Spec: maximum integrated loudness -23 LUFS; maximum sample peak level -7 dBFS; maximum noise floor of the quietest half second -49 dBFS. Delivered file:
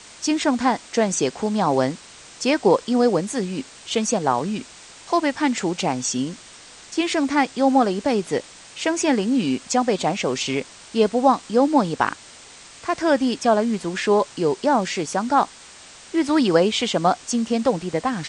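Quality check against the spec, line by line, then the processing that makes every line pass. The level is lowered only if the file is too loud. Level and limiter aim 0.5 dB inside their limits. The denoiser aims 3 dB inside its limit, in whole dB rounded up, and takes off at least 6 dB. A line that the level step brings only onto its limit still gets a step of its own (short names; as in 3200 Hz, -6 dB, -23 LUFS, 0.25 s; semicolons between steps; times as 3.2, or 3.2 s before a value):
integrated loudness -21.5 LUFS: fail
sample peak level -3.0 dBFS: fail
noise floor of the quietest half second -44 dBFS: fail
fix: denoiser 6 dB, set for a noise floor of -44 dBFS; gain -2 dB; limiter -7.5 dBFS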